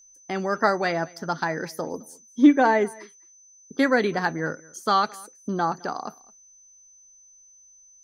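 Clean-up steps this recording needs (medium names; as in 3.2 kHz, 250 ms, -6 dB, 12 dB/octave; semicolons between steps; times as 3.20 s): band-stop 6.1 kHz, Q 30; inverse comb 213 ms -24 dB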